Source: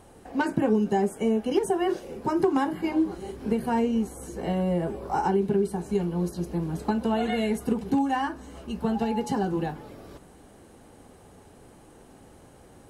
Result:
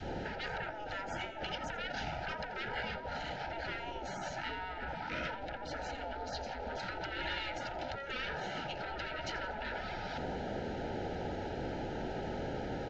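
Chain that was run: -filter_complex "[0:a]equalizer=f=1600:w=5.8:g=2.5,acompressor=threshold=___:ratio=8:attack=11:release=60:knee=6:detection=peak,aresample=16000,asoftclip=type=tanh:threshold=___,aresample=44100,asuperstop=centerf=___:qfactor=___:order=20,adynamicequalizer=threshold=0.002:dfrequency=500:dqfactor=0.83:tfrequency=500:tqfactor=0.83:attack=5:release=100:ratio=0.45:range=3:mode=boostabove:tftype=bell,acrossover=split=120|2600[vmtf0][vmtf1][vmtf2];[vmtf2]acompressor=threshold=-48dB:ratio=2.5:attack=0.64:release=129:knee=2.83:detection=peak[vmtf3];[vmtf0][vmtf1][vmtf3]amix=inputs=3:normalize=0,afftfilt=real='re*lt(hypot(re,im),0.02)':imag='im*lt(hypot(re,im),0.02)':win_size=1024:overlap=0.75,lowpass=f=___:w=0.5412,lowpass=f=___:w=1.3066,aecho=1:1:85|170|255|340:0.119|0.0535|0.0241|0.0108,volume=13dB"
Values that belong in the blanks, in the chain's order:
-36dB, -37dB, 1100, 3.9, 4800, 4800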